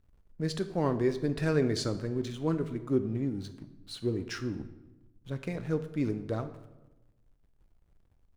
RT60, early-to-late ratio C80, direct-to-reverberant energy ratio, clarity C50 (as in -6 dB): 1.1 s, 14.5 dB, 9.5 dB, 12.5 dB